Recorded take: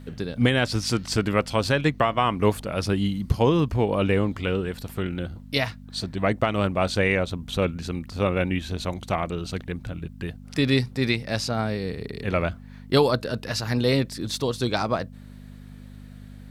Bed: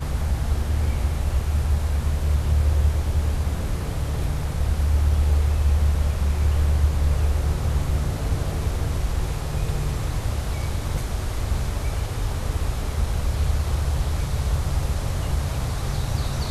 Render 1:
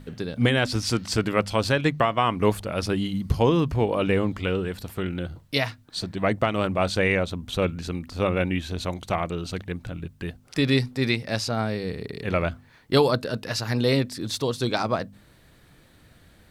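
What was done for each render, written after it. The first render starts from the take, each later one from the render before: de-hum 50 Hz, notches 5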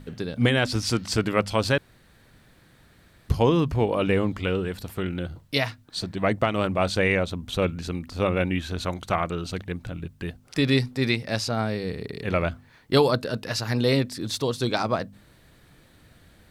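1.78–3.29 room tone; 8.58–9.43 bell 1400 Hz +5.5 dB 0.63 oct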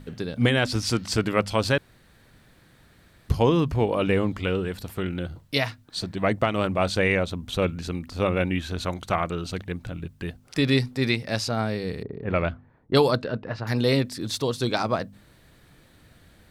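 12.03–13.67 low-pass opened by the level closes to 550 Hz, open at -15.5 dBFS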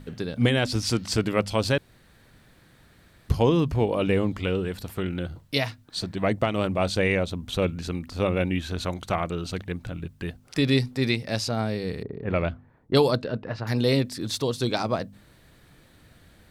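dynamic EQ 1400 Hz, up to -4 dB, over -36 dBFS, Q 1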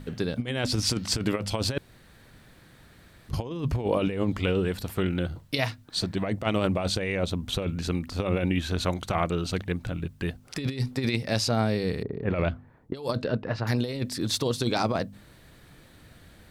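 negative-ratio compressor -25 dBFS, ratio -0.5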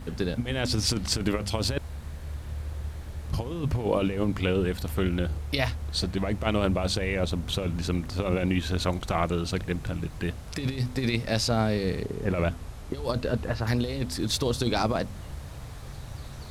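add bed -15 dB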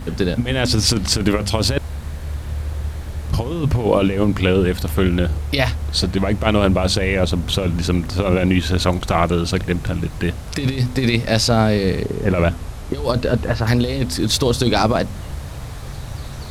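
gain +9.5 dB; limiter -2 dBFS, peak gain reduction 2.5 dB

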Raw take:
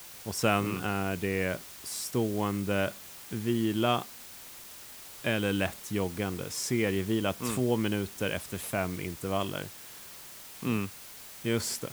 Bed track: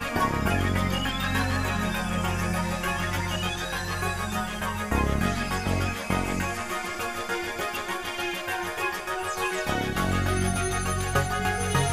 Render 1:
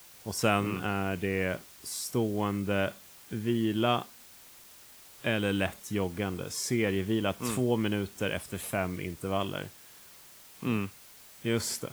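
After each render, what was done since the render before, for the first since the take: noise print and reduce 6 dB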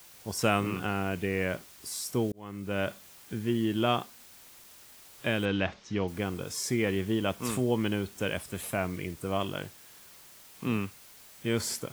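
2.32–2.91 fade in; 5.45–6.08 steep low-pass 5800 Hz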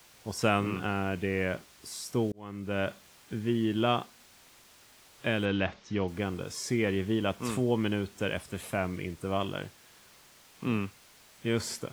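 high shelf 9600 Hz -12 dB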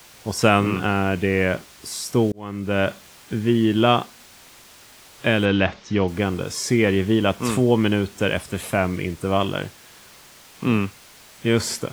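gain +10 dB; limiter -2 dBFS, peak gain reduction 0.5 dB

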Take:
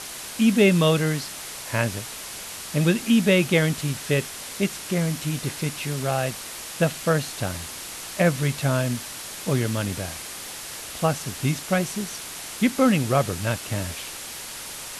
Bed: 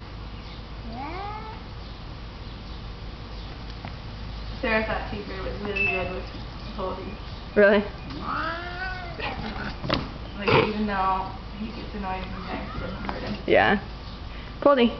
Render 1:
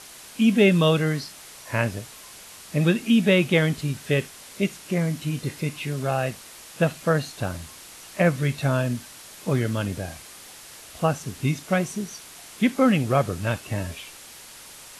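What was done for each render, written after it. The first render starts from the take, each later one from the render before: noise print and reduce 8 dB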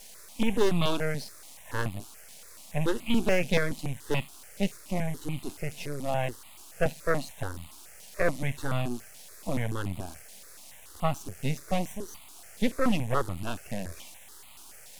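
half-wave rectifier; step phaser 7 Hz 330–1600 Hz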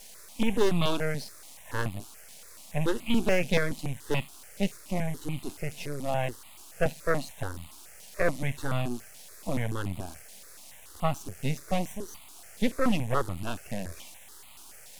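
nothing audible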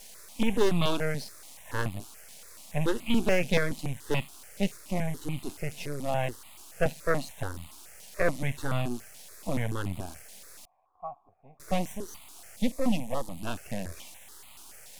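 10.65–11.6 vocal tract filter a; 12.56–13.43 fixed phaser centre 390 Hz, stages 6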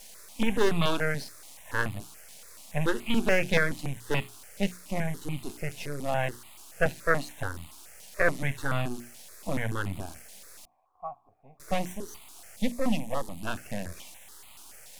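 notches 60/120/180/240/300/360/420 Hz; dynamic EQ 1600 Hz, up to +7 dB, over -49 dBFS, Q 1.9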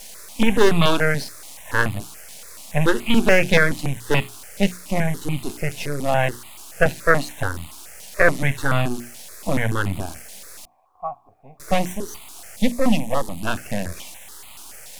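gain +9 dB; limiter -2 dBFS, peak gain reduction 2 dB

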